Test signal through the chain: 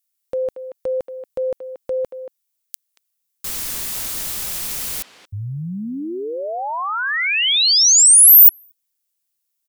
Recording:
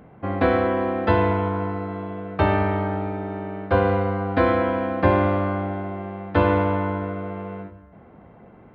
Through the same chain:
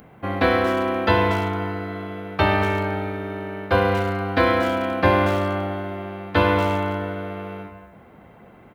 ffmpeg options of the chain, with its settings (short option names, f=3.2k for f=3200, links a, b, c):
-filter_complex "[0:a]asplit=2[a][b];[b]adelay=230,highpass=300,lowpass=3.4k,asoftclip=type=hard:threshold=-15dB,volume=-10dB[c];[a][c]amix=inputs=2:normalize=0,crystalizer=i=6:c=0,volume=-1dB"